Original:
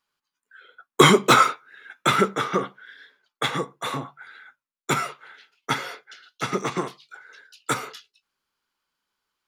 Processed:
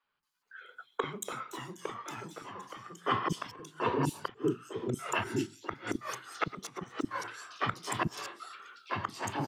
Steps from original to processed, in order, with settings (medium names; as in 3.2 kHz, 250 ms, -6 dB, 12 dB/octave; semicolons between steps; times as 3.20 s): 3.50–4.99 s: FFT filter 240 Hz 0 dB, 410 Hz +11 dB, 770 Hz -17 dB, 3 kHz -16 dB, 9.3 kHz -2 dB; ever faster or slower copies 412 ms, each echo -2 st, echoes 2; inverted gate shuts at -15 dBFS, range -25 dB; three bands offset in time mids, lows, highs 40/230 ms, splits 310/3800 Hz